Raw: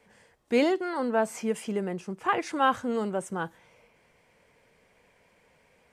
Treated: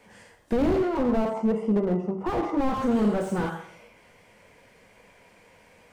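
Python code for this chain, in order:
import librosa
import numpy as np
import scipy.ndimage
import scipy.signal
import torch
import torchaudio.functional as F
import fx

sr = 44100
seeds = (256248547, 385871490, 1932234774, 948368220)

y = fx.savgol(x, sr, points=65, at=(0.69, 2.76))
y = fx.rev_plate(y, sr, seeds[0], rt60_s=0.58, hf_ratio=0.95, predelay_ms=0, drr_db=2.5)
y = fx.slew_limit(y, sr, full_power_hz=18.0)
y = y * 10.0 ** (6.0 / 20.0)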